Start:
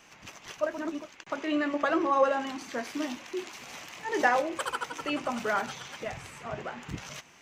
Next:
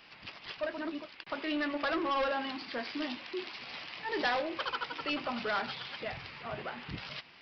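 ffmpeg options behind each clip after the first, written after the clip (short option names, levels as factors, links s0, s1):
-af "aresample=11025,asoftclip=type=tanh:threshold=0.0562,aresample=44100,highshelf=f=2800:g=10.5,volume=0.708"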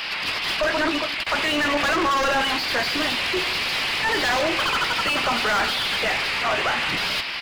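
-filter_complex "[0:a]crystalizer=i=8:c=0,asplit=2[s0][s1];[s1]highpass=f=720:p=1,volume=44.7,asoftclip=type=tanh:threshold=0.335[s2];[s0][s2]amix=inputs=2:normalize=0,lowpass=f=1600:p=1,volume=0.501,aecho=1:1:159:0.15,volume=0.841"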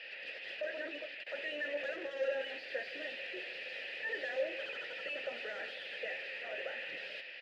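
-filter_complex "[0:a]asplit=3[s0][s1][s2];[s0]bandpass=f=530:t=q:w=8,volume=1[s3];[s1]bandpass=f=1840:t=q:w=8,volume=0.501[s4];[s2]bandpass=f=2480:t=q:w=8,volume=0.355[s5];[s3][s4][s5]amix=inputs=3:normalize=0,volume=0.447"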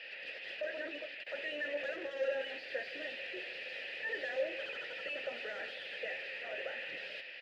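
-af "lowshelf=f=72:g=8.5"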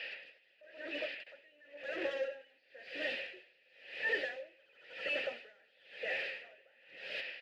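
-af "aeval=exprs='val(0)*pow(10,-31*(0.5-0.5*cos(2*PI*0.97*n/s))/20)':c=same,volume=1.88"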